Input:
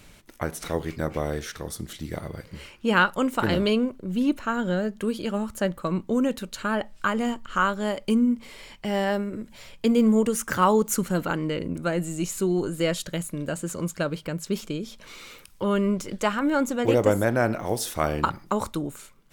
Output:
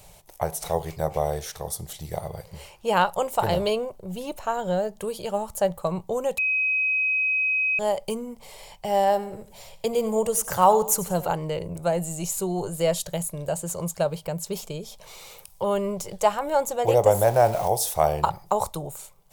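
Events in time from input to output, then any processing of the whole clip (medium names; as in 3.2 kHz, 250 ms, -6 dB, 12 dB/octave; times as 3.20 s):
6.38–7.79 s: bleep 2.53 kHz -16.5 dBFS
9.02–11.29 s: feedback delay 92 ms, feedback 37%, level -15.5 dB
17.14–17.68 s: jump at every zero crossing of -32.5 dBFS
whole clip: FFT filter 170 Hz 0 dB, 260 Hz -19 dB, 390 Hz -2 dB, 790 Hz +10 dB, 1.4 kHz -8 dB, 13 kHz +8 dB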